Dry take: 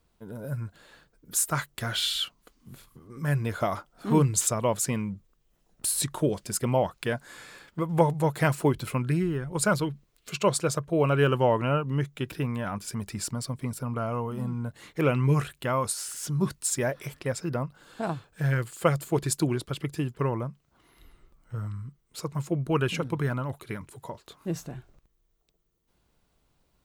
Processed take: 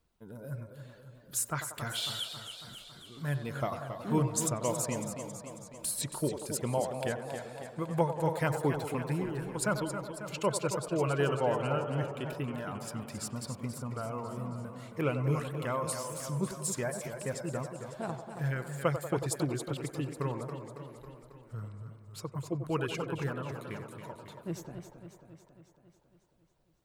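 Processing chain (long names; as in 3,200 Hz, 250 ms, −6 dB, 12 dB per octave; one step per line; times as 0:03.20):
reverb reduction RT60 0.57 s
on a send: feedback echo with a band-pass in the loop 93 ms, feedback 77%, band-pass 640 Hz, level −8 dB
on the sum: feedback echo with a swinging delay time 274 ms, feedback 62%, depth 90 cents, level −9 dB
level −6.5 dB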